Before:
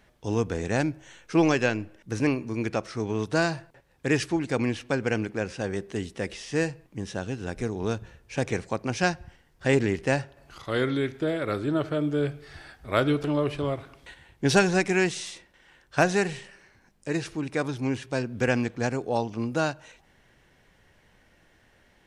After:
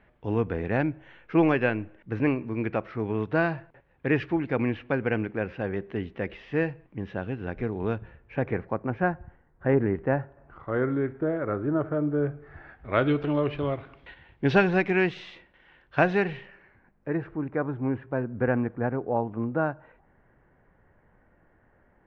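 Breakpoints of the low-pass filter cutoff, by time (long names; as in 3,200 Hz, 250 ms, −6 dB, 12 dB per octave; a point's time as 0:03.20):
low-pass filter 24 dB per octave
0:07.96 2,600 Hz
0:09.00 1,600 Hz
0:12.44 1,600 Hz
0:13.08 3,100 Hz
0:16.21 3,100 Hz
0:17.29 1,600 Hz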